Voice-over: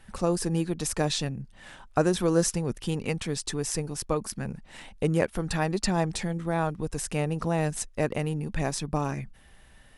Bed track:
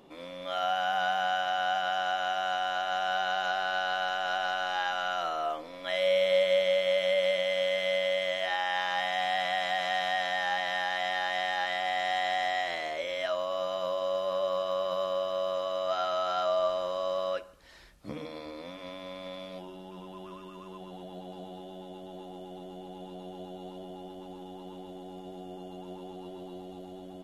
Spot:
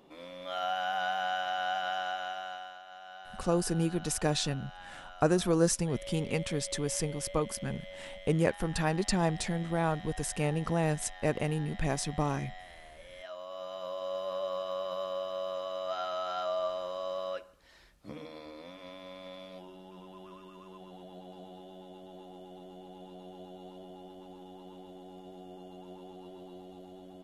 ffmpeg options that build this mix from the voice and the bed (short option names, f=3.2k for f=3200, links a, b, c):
-filter_complex "[0:a]adelay=3250,volume=-2.5dB[a];[1:a]volume=10dB,afade=t=out:st=1.93:d=0.86:silence=0.177828,afade=t=in:st=13.03:d=1.18:silence=0.211349[b];[a][b]amix=inputs=2:normalize=0"